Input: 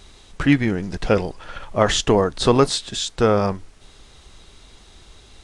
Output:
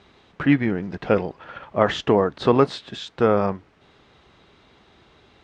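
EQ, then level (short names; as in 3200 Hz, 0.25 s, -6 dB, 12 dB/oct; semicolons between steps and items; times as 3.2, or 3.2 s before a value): BPF 120–2500 Hz; -1.0 dB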